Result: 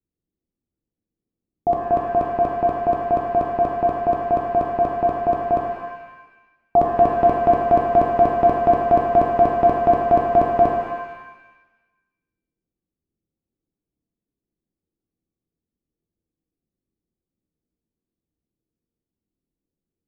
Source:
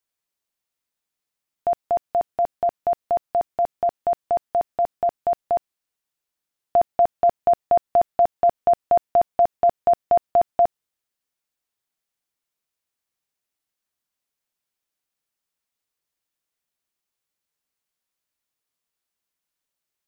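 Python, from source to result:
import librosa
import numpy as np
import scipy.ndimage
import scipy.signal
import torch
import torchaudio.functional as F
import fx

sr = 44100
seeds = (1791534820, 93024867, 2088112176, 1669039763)

y = fx.low_shelf_res(x, sr, hz=460.0, db=9.5, q=1.5)
y = fx.env_lowpass(y, sr, base_hz=340.0, full_db=-20.5)
y = fx.rev_shimmer(y, sr, seeds[0], rt60_s=1.1, semitones=7, shimmer_db=-8, drr_db=0.0)
y = F.gain(torch.from_numpy(y), 2.5).numpy()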